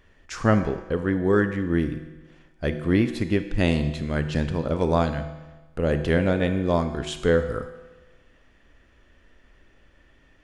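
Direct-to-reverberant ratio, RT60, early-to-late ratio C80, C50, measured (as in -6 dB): 8.5 dB, 1.2 s, 11.0 dB, 9.5 dB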